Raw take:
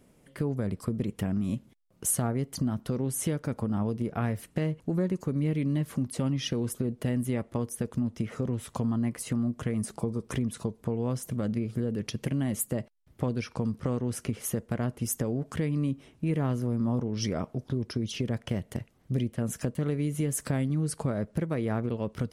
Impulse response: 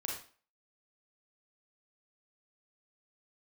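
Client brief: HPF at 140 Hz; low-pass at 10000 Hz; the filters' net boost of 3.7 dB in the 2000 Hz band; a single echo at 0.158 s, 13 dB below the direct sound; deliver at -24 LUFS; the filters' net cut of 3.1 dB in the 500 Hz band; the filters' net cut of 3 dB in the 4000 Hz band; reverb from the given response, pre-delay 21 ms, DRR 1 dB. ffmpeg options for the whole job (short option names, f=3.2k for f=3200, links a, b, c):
-filter_complex "[0:a]highpass=140,lowpass=10k,equalizer=f=500:t=o:g=-4,equalizer=f=2k:t=o:g=6.5,equalizer=f=4k:t=o:g=-7.5,aecho=1:1:158:0.224,asplit=2[a][b];[1:a]atrim=start_sample=2205,adelay=21[c];[b][c]afir=irnorm=-1:irlink=0,volume=-2.5dB[d];[a][d]amix=inputs=2:normalize=0,volume=7dB"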